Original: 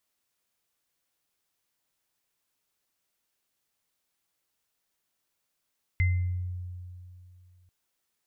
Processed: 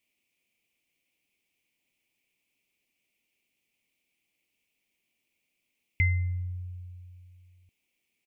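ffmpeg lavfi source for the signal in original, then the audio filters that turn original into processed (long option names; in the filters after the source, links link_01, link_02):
-f lavfi -i "aevalsrc='0.1*pow(10,-3*t/2.62)*sin(2*PI*89.9*t)+0.0447*pow(10,-3*t/0.52)*sin(2*PI*2070*t)':duration=1.69:sample_rate=44100"
-af "firequalizer=gain_entry='entry(120,0);entry(240,7);entry(440,1);entry(1500,-15);entry(2300,14);entry(3800,-3)':delay=0.05:min_phase=1"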